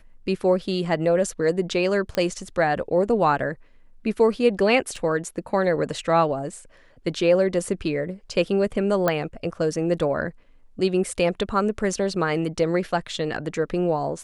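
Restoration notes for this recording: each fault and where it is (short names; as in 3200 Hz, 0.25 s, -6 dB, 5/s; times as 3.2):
2.15 pop -12 dBFS
4.96 gap 3.7 ms
9.08 pop -8 dBFS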